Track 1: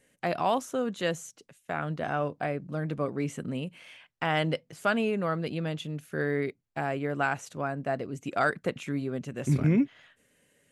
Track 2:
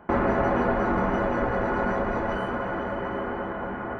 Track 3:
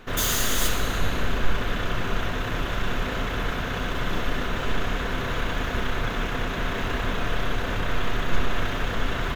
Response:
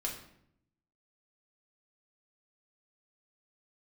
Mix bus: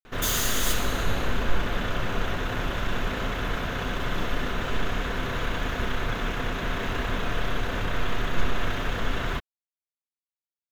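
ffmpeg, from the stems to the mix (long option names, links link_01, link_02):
-filter_complex "[1:a]adelay=700,volume=-14.5dB[link_01];[2:a]adelay=50,volume=-1.5dB[link_02];[link_01][link_02]amix=inputs=2:normalize=0"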